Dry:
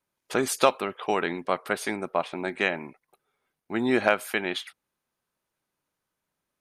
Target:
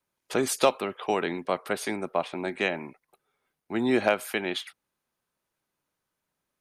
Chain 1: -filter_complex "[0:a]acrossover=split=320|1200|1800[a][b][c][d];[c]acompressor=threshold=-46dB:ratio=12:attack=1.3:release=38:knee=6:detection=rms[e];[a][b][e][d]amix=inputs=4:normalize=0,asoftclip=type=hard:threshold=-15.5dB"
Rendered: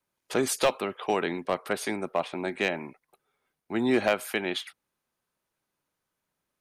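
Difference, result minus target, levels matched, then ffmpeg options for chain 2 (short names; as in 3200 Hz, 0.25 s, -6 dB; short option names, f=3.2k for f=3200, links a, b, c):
hard clip: distortion +19 dB
-filter_complex "[0:a]acrossover=split=320|1200|1800[a][b][c][d];[c]acompressor=threshold=-46dB:ratio=12:attack=1.3:release=38:knee=6:detection=rms[e];[a][b][e][d]amix=inputs=4:normalize=0,asoftclip=type=hard:threshold=-8dB"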